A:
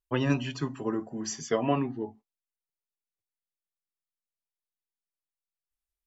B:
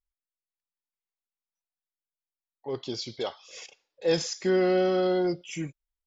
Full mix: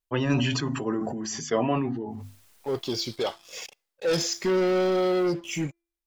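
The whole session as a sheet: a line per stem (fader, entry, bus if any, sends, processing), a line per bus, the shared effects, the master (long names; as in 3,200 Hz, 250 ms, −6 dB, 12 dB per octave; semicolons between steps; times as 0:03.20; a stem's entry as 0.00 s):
+1.0 dB, 0.00 s, no send, de-essing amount 60%; mains-hum notches 50/100/150/200/250 Hz; level that may fall only so fast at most 26 dB per second; automatic ducking −7 dB, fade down 1.15 s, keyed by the second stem
−5.5 dB, 0.00 s, no send, hum removal 339.1 Hz, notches 7; leveller curve on the samples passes 3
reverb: not used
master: no processing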